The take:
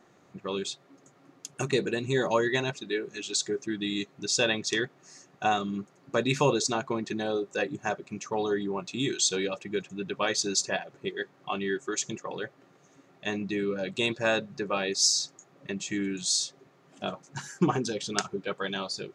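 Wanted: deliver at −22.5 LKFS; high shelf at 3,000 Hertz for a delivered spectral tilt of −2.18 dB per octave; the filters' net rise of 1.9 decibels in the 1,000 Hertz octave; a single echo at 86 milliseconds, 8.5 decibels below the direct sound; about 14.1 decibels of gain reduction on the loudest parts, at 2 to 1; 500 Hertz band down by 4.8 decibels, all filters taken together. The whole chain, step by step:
parametric band 500 Hz −7.5 dB
parametric band 1,000 Hz +4.5 dB
high-shelf EQ 3,000 Hz +6.5 dB
downward compressor 2 to 1, threshold −42 dBFS
single-tap delay 86 ms −8.5 dB
level +15 dB

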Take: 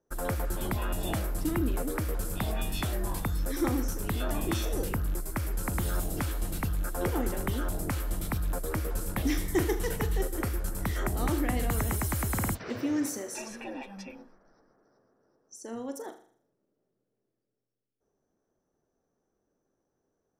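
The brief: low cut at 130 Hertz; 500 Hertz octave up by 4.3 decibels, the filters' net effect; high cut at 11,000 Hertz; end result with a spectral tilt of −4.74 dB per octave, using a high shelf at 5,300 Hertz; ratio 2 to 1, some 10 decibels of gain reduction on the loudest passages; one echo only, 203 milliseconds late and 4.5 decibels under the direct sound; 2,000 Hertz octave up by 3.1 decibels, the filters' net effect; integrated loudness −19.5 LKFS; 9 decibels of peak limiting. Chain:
high-pass filter 130 Hz
low-pass filter 11,000 Hz
parametric band 500 Hz +5.5 dB
parametric band 2,000 Hz +4 dB
high-shelf EQ 5,300 Hz −4 dB
downward compressor 2 to 1, threshold −39 dBFS
brickwall limiter −30.5 dBFS
single-tap delay 203 ms −4.5 dB
level +20 dB

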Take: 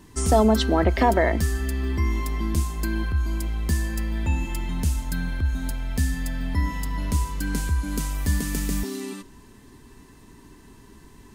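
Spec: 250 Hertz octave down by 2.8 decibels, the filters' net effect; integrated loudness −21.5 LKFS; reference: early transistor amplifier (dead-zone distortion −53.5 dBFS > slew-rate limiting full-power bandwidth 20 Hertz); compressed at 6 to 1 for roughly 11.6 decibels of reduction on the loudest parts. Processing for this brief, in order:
parametric band 250 Hz −3.5 dB
downward compressor 6 to 1, threshold −27 dBFS
dead-zone distortion −53.5 dBFS
slew-rate limiting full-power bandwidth 20 Hz
level +12 dB

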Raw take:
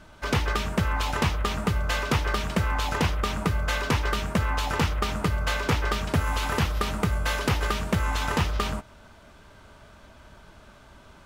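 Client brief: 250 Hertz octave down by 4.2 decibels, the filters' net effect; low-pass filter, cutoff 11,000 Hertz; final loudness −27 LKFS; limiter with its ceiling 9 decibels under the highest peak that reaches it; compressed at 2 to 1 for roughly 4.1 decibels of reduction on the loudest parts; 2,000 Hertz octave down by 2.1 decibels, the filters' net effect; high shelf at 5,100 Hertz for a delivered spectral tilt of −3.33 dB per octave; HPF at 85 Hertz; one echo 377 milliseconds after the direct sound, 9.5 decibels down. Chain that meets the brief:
high-pass filter 85 Hz
low-pass filter 11,000 Hz
parametric band 250 Hz −6 dB
parametric band 2,000 Hz −4 dB
high-shelf EQ 5,100 Hz +8.5 dB
downward compressor 2 to 1, threshold −29 dBFS
brickwall limiter −22.5 dBFS
single-tap delay 377 ms −9.5 dB
level +6 dB

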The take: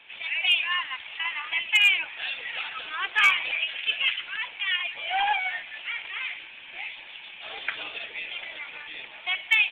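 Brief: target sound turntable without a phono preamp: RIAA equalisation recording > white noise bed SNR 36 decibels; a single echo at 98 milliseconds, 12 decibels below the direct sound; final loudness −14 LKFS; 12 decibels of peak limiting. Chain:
brickwall limiter −23 dBFS
RIAA equalisation recording
single-tap delay 98 ms −12 dB
white noise bed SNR 36 dB
level +14 dB

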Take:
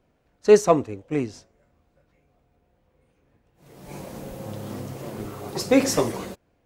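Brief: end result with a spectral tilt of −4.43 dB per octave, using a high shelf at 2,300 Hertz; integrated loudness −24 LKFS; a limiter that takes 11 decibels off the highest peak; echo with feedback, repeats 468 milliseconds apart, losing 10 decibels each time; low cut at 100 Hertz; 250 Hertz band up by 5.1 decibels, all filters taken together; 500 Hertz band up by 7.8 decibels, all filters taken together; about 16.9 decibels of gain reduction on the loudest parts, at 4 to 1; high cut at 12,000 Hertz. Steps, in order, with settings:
high-pass filter 100 Hz
low-pass filter 12,000 Hz
parametric band 250 Hz +3.5 dB
parametric band 500 Hz +8 dB
high-shelf EQ 2,300 Hz +8.5 dB
downward compressor 4 to 1, threshold −22 dBFS
brickwall limiter −21.5 dBFS
repeating echo 468 ms, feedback 32%, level −10 dB
level +8 dB

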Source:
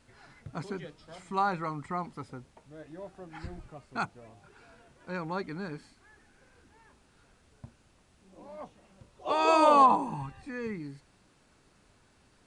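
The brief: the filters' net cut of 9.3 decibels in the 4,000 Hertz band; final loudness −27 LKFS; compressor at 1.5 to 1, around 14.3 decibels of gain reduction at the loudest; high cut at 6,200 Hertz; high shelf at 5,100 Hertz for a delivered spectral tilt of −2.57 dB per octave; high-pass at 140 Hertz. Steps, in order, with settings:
high-pass filter 140 Hz
low-pass filter 6,200 Hz
parametric band 4,000 Hz −9 dB
high-shelf EQ 5,100 Hz −4.5 dB
downward compressor 1.5 to 1, threshold −58 dBFS
level +17 dB

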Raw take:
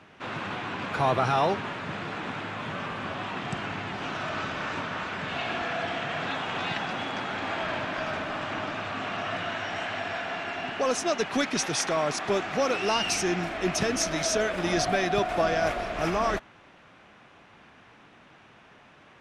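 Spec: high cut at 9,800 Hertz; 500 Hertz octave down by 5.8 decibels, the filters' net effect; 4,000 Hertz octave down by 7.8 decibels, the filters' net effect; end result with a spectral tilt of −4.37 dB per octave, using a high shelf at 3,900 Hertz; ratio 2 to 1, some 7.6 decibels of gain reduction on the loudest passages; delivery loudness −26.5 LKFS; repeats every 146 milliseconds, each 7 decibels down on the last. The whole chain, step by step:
low-pass filter 9,800 Hz
parametric band 500 Hz −8 dB
high-shelf EQ 3,900 Hz −5 dB
parametric band 4,000 Hz −8 dB
downward compressor 2 to 1, threshold −37 dBFS
repeating echo 146 ms, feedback 45%, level −7 dB
level +9.5 dB

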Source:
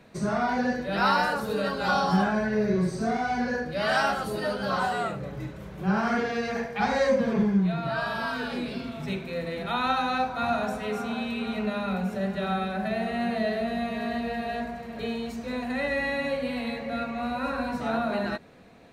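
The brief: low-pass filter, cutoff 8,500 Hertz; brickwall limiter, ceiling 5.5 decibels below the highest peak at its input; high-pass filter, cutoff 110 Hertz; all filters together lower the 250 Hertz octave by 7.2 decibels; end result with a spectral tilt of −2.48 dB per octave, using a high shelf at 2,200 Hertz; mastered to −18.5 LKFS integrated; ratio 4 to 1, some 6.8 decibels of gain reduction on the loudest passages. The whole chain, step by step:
high-pass filter 110 Hz
low-pass filter 8,500 Hz
parametric band 250 Hz −9 dB
high-shelf EQ 2,200 Hz +4.5 dB
downward compressor 4 to 1, threshold −27 dBFS
level +14 dB
brickwall limiter −9 dBFS

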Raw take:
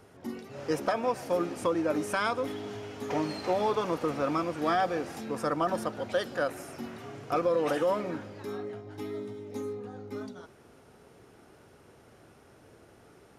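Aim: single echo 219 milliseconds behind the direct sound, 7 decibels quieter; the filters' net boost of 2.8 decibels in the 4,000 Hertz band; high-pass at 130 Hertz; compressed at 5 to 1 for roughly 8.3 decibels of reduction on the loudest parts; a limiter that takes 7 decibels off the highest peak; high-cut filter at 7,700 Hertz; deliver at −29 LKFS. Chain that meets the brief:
high-pass filter 130 Hz
low-pass filter 7,700 Hz
parametric band 4,000 Hz +4 dB
downward compressor 5 to 1, threshold −32 dBFS
brickwall limiter −28 dBFS
single-tap delay 219 ms −7 dB
level +9 dB

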